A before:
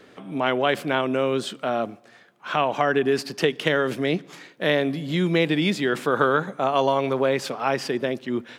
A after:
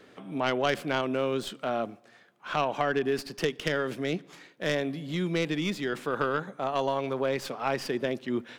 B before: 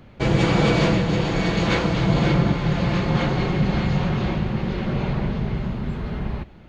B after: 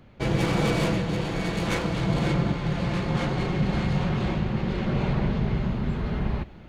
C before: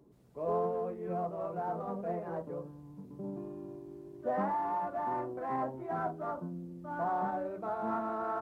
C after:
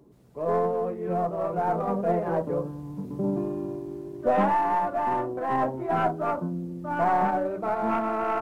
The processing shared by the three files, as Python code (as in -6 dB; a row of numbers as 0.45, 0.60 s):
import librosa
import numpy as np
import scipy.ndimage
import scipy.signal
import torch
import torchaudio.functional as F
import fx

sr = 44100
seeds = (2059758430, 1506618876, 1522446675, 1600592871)

y = fx.tracing_dist(x, sr, depth_ms=0.073)
y = fx.rider(y, sr, range_db=5, speed_s=2.0)
y = y * 10.0 ** (-12 / 20.0) / np.max(np.abs(y))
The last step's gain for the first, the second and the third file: -7.0, -4.5, +9.0 dB